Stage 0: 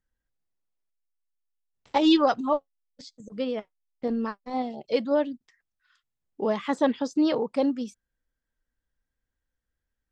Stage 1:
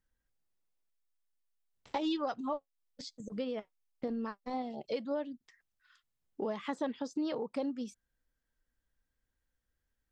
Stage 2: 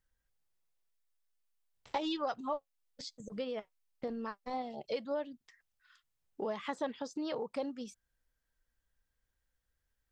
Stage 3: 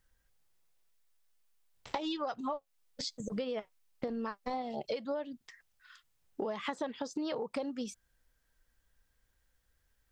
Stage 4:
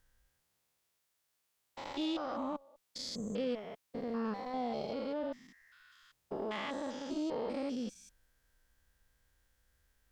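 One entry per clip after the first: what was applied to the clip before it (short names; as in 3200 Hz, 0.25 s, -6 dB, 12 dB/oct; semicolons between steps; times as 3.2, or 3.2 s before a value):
compressor 3:1, threshold -36 dBFS, peak gain reduction 15 dB
bell 260 Hz -6 dB 1.1 oct; gain +1 dB
compressor 6:1, threshold -41 dBFS, peak gain reduction 11.5 dB; gain +8 dB
stepped spectrum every 0.2 s; added harmonics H 6 -28 dB, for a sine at -28.5 dBFS; gain +3.5 dB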